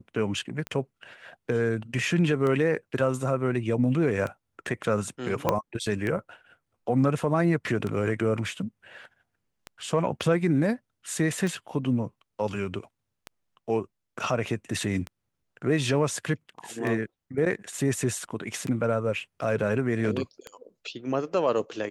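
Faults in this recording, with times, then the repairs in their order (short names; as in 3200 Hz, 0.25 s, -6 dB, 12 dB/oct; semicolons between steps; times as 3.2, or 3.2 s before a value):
tick 33 1/3 rpm -19 dBFS
5.49 pop -9 dBFS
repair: de-click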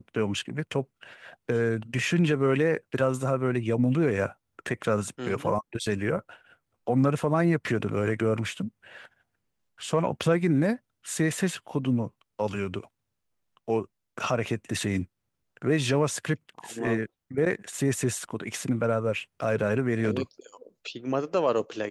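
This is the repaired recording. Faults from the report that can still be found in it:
5.49 pop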